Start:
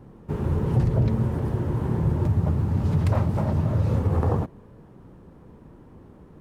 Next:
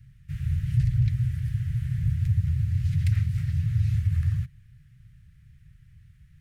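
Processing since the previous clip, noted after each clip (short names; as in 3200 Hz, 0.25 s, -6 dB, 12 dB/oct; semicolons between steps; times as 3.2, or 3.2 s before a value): elliptic band-stop 130–1900 Hz, stop band 40 dB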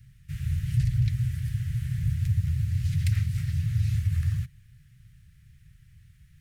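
high shelf 2800 Hz +9 dB; gain -1.5 dB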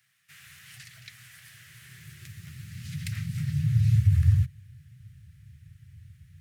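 high-pass sweep 700 Hz -> 89 Hz, 1.36–4.36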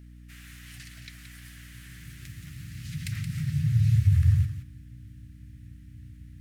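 thinning echo 0.174 s, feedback 15%, high-pass 160 Hz, level -8.5 dB; hum 60 Hz, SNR 19 dB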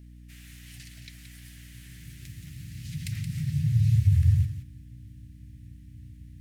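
bell 1300 Hz -10 dB 1 oct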